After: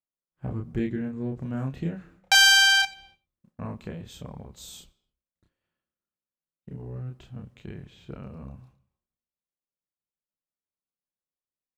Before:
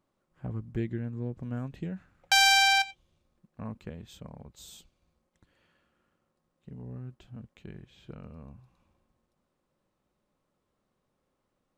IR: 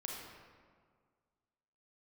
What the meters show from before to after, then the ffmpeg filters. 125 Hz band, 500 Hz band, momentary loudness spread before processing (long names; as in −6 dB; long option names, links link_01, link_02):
+3.0 dB, +5.0 dB, 25 LU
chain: -filter_complex "[0:a]agate=range=-33dB:threshold=-55dB:ratio=3:detection=peak,asplit=2[link_01][link_02];[link_02]adelay=30,volume=-3dB[link_03];[link_01][link_03]amix=inputs=2:normalize=0,asplit=2[link_04][link_05];[1:a]atrim=start_sample=2205,afade=type=out:start_time=0.35:duration=0.01,atrim=end_sample=15876[link_06];[link_05][link_06]afir=irnorm=-1:irlink=0,volume=-17.5dB[link_07];[link_04][link_07]amix=inputs=2:normalize=0,volume=3dB"